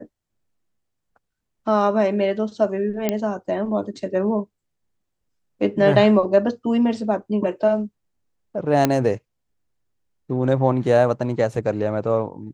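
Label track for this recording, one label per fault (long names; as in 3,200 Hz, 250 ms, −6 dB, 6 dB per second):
3.090000	3.090000	click −7 dBFS
8.850000	8.850000	click −3 dBFS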